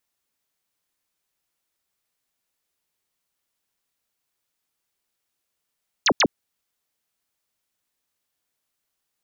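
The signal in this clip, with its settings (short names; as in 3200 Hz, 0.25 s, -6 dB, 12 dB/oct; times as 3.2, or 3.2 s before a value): burst of laser zaps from 7400 Hz, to 170 Hz, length 0.06 s sine, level -14.5 dB, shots 2, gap 0.08 s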